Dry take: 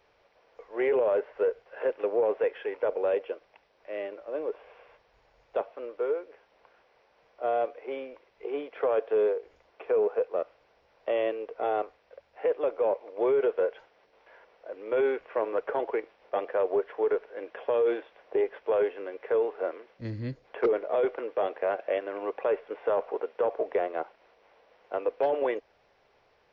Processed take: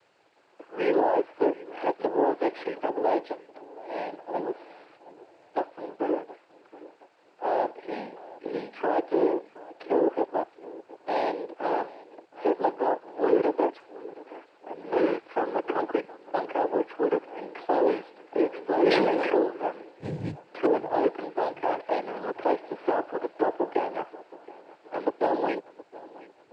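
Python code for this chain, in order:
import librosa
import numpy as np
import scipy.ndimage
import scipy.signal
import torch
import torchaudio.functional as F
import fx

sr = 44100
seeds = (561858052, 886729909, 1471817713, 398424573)

y = fx.noise_vocoder(x, sr, seeds[0], bands=8)
y = fx.echo_feedback(y, sr, ms=721, feedback_pct=46, wet_db=-19.5)
y = fx.sustainer(y, sr, db_per_s=21.0, at=(18.73, 19.37))
y = y * 10.0 ** (1.5 / 20.0)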